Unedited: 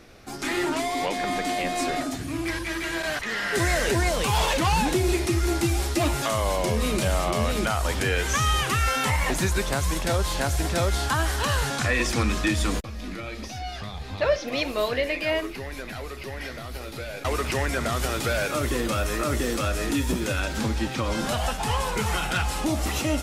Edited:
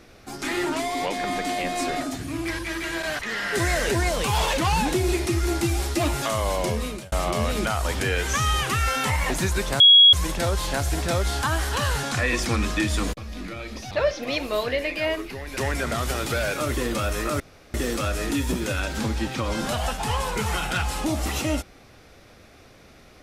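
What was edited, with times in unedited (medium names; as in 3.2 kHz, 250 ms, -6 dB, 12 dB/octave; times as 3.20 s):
6.67–7.12 s: fade out
9.80 s: add tone 3.32 kHz -8.5 dBFS 0.33 s
13.58–14.16 s: delete
15.82–17.51 s: delete
19.34 s: insert room tone 0.34 s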